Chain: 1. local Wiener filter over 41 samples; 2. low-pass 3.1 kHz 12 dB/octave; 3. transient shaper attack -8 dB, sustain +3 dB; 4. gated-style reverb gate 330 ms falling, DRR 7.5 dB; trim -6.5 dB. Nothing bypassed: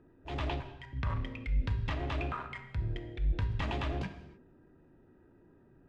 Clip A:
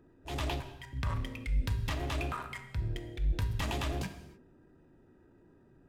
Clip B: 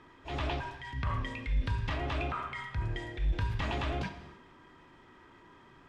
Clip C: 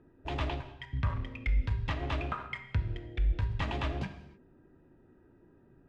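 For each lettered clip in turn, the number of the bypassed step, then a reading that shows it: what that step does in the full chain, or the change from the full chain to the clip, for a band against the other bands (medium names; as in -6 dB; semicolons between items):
2, 4 kHz band +4.0 dB; 1, 125 Hz band -3.0 dB; 3, loudness change +1.5 LU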